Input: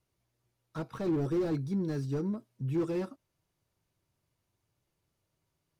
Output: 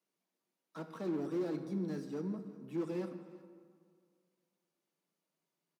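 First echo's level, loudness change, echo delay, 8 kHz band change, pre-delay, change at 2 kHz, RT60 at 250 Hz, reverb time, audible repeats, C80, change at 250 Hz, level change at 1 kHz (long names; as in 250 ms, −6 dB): −20.0 dB, −6.0 dB, 366 ms, can't be measured, 18 ms, −5.5 dB, 2.0 s, 2.0 s, 1, 10.0 dB, −5.5 dB, −5.5 dB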